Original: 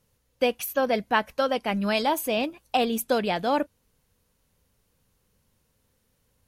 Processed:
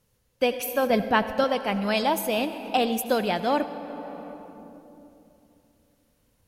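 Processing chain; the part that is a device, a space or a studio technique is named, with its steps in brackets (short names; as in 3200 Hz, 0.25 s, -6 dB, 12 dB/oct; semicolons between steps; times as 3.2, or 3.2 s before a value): compressed reverb return (on a send at -3.5 dB: reverb RT60 2.9 s, pre-delay 72 ms + compressor 10:1, threshold -28 dBFS, peak gain reduction 10 dB); 0.9–1.44 on the sum: low shelf 220 Hz +12 dB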